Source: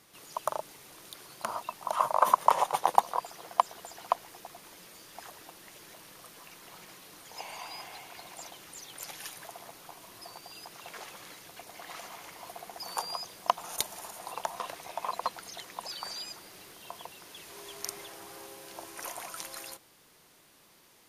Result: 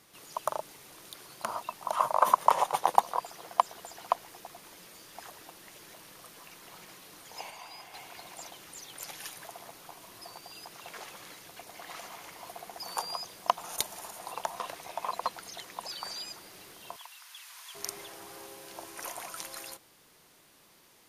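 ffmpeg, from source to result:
ffmpeg -i in.wav -filter_complex "[0:a]asettb=1/sr,asplit=3[link_01][link_02][link_03];[link_01]atrim=end=16.964[link_04];[link_02]atrim=start=16.96:end=17.75,asetpts=PTS-STARTPTS,afade=type=in:duration=0.004:curve=qsin,afade=type=out:start_time=0.786:duration=0.004:curve=qsin,highpass=frequency=1000:width=0.5412,highpass=frequency=1000:width=1.3066[link_05];[link_03]atrim=start=17.746[link_06];[link_04][link_05]acrossfade=duration=0.004:curve1=hsin:curve2=qsin[link_07];[link_07][link_06]acrossfade=duration=0.004:curve1=qsin:curve2=hsin,asplit=3[link_08][link_09][link_10];[link_08]atrim=end=7.502[link_11];[link_09]atrim=start=7.498:end=7.942,asetpts=PTS-STARTPTS,volume=-4.5dB[link_12];[link_10]atrim=start=7.938[link_13];[link_11][link_12]acrossfade=duration=0.004:curve1=hsin:curve2=hsin[link_14];[link_14][link_13]acrossfade=duration=0.004:curve1=hsin:curve2=hsin" out.wav

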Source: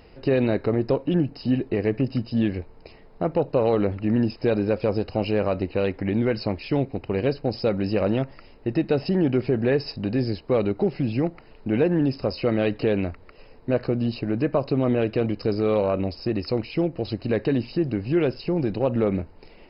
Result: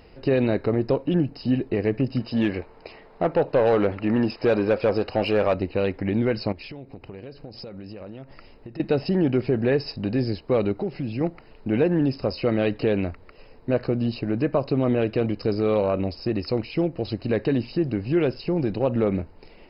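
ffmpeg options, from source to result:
ffmpeg -i in.wav -filter_complex "[0:a]asettb=1/sr,asplit=3[link_01][link_02][link_03];[link_01]atrim=end=2.204[link_04];[link_02]atrim=start=2.2:end=5.54,asetpts=PTS-STARTPTS,afade=type=in:duration=0.004:curve=qsin,afade=type=out:start_time=3.336:duration=0.004:curve=qsin,asplit=2[link_05][link_06];[link_06]highpass=frequency=720:poles=1,volume=14dB,asoftclip=type=tanh:threshold=-10dB[link_07];[link_05][link_07]amix=inputs=2:normalize=0,lowpass=frequency=2600:poles=1,volume=-6dB[link_08];[link_03]atrim=start=5.536[link_09];[link_04][link_08]acrossfade=duration=0.004:curve1=hsin:curve2=qsin[link_10];[link_10][link_09]acrossfade=duration=0.004:curve1=qsin:curve2=hsin,asettb=1/sr,asplit=3[link_11][link_12][link_13];[link_11]atrim=end=6.524[link_14];[link_12]atrim=start=6.52:end=8.8,asetpts=PTS-STARTPTS,afade=type=in:duration=0.004:curve=qsin,afade=type=out:start_time=2.276:duration=0.004:curve=qsin,acompressor=threshold=-35dB:ratio=10:attack=3.2:release=140:knee=1:detection=peak[link_15];[link_13]atrim=start=8.796[link_16];[link_14][link_15]acrossfade=duration=0.004:curve1=hsin:curve2=qsin[link_17];[link_17][link_16]acrossfade=duration=0.004:curve1=qsin:curve2=hsin,asettb=1/sr,asplit=3[link_18][link_19][link_20];[link_18]atrim=end=10.744[link_21];[link_19]atrim=start=10.74:end=11.21,asetpts=PTS-STARTPTS,afade=type=in:duration=0.004:curve=qsin,afade=type=out:start_time=0.466:duration=0.004:curve=qsin,acompressor=threshold=-32dB:ratio=1.5:attack=3.2:release=140:knee=1:detection=peak[link_22];[link_20]atrim=start=11.206[link_23];[link_21][link_22]acrossfade=duration=0.004:curve1=hsin:curve2=qsin[link_24];[link_24][link_23]acrossfade=duration=0.004:curve1=qsin:curve2=hsin" out.wav

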